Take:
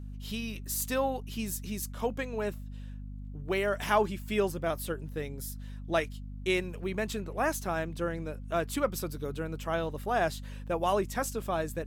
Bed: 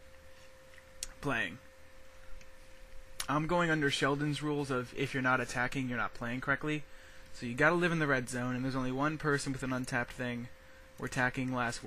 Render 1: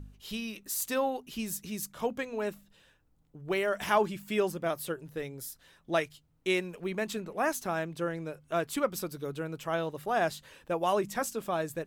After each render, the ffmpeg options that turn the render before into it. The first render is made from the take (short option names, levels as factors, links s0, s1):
-af "bandreject=f=50:t=h:w=4,bandreject=f=100:t=h:w=4,bandreject=f=150:t=h:w=4,bandreject=f=200:t=h:w=4,bandreject=f=250:t=h:w=4"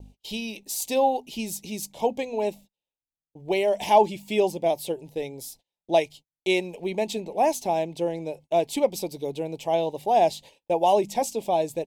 -af "agate=range=0.0158:threshold=0.00316:ratio=16:detection=peak,firequalizer=gain_entry='entry(140,0);entry(220,4);entry(870,12);entry(1300,-23);entry(2200,4);entry(3800,7);entry(15000,-1)':delay=0.05:min_phase=1"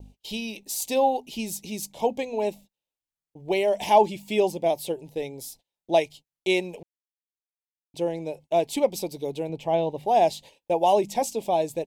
-filter_complex "[0:a]asettb=1/sr,asplit=3[s0][s1][s2];[s0]atrim=end=9.494[s3];[s1]atrim=start=9.49:end=10.06,asetpts=PTS-STARTPTS,afade=t=in:d=0.004:c=qsin,afade=t=out:st=0.566:d=0.004:c=qsin,bass=f=250:g=5,treble=f=4000:g=-10[s4];[s2]atrim=start=10.056[s5];[s3][s4]acrossfade=d=0.004:c1=hsin:c2=qsin[s6];[s6][s5]acrossfade=d=0.004:c1=qsin:c2=hsin,asplit=3[s7][s8][s9];[s7]atrim=end=6.83,asetpts=PTS-STARTPTS,afade=t=out:st=6.826:d=0.004:c=hsin[s10];[s8]atrim=start=6.83:end=7.94,asetpts=PTS-STARTPTS,volume=0[s11];[s9]atrim=start=7.94,asetpts=PTS-STARTPTS,afade=t=in:d=0.004:c=hsin[s12];[s10][s11][s12]concat=n=3:v=0:a=1"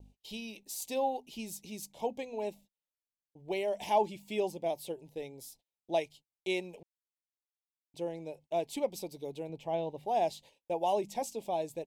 -af "volume=0.316"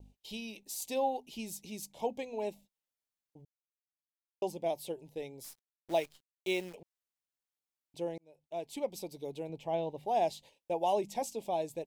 -filter_complex "[0:a]asplit=3[s0][s1][s2];[s0]afade=t=out:st=5.43:d=0.02[s3];[s1]acrusher=bits=9:dc=4:mix=0:aa=0.000001,afade=t=in:st=5.43:d=0.02,afade=t=out:st=6.73:d=0.02[s4];[s2]afade=t=in:st=6.73:d=0.02[s5];[s3][s4][s5]amix=inputs=3:normalize=0,asplit=4[s6][s7][s8][s9];[s6]atrim=end=3.45,asetpts=PTS-STARTPTS,afade=t=out:st=3.446:d=0.004:c=hsin[s10];[s7]atrim=start=3.45:end=4.42,asetpts=PTS-STARTPTS,volume=0[s11];[s8]atrim=start=4.42:end=8.18,asetpts=PTS-STARTPTS,afade=t=in:d=0.004:c=hsin,afade=t=out:st=3.756:d=0.004:c=hsin[s12];[s9]atrim=start=8.18,asetpts=PTS-STARTPTS,afade=t=in:d=1.31:c=qsin[s13];[s10][s11][s12][s13]concat=n=4:v=0:a=1"